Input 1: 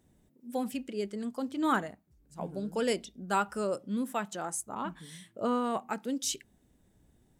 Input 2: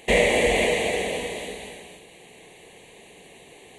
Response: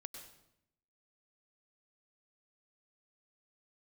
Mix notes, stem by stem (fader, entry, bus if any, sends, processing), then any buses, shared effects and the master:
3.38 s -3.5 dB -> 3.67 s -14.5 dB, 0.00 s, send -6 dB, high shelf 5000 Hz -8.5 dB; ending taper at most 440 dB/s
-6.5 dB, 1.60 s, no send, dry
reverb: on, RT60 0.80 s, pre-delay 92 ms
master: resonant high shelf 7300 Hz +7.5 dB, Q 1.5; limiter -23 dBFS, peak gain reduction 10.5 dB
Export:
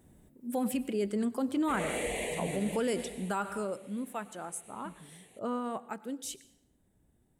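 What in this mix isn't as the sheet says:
stem 1 -3.5 dB -> +4.5 dB; stem 2 -6.5 dB -> -14.0 dB

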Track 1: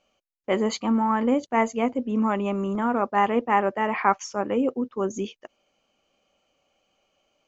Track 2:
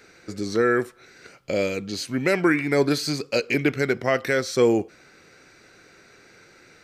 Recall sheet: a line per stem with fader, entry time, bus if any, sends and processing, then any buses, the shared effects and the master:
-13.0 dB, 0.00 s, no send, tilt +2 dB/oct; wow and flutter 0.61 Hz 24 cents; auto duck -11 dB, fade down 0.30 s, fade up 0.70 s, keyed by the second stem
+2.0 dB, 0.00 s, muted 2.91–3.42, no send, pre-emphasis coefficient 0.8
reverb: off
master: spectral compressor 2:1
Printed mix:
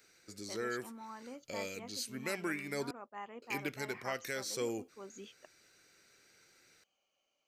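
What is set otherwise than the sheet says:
stem 2 +2.0 dB -> -5.0 dB; master: missing spectral compressor 2:1

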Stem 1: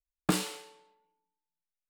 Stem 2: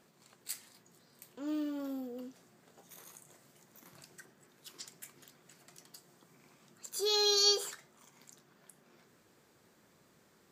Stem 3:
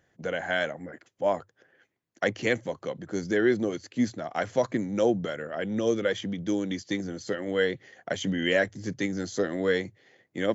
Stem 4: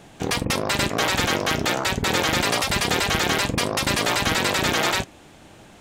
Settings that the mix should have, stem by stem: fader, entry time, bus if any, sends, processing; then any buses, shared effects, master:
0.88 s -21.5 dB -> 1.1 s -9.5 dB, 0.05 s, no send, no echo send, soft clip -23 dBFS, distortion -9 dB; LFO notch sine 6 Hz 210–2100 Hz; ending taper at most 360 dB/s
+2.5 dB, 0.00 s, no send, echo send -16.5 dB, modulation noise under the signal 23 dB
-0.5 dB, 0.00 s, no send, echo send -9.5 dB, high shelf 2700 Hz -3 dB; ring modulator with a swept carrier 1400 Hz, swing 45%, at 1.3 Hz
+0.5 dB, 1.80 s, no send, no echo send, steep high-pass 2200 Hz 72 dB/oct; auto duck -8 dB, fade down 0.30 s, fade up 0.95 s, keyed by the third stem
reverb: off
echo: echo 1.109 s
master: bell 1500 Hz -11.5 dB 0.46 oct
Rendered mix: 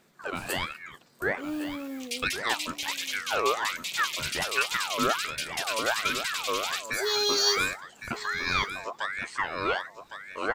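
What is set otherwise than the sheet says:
stem 1 -21.5 dB -> -14.5 dB; master: missing bell 1500 Hz -11.5 dB 0.46 oct

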